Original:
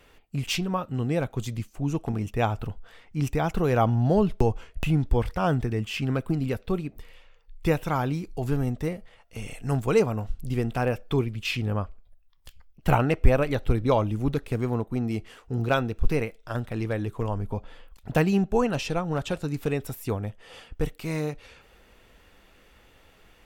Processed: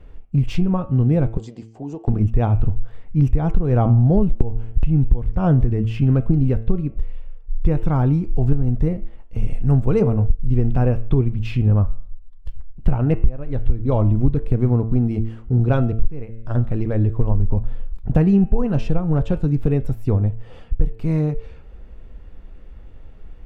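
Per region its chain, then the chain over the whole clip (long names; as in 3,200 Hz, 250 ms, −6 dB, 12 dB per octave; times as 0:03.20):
0:01.37–0:02.08: loudspeaker in its box 360–8,200 Hz, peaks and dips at 440 Hz +5 dB, 780 Hz +7 dB, 1,300 Hz −8 dB, 2,300 Hz −6 dB, 4,800 Hz +7 dB, 7,500 Hz +8 dB + downward compressor 3 to 1, threshold −34 dBFS
whole clip: spectral tilt −4.5 dB per octave; hum removal 112.2 Hz, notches 29; downward compressor 16 to 1, threshold −10 dBFS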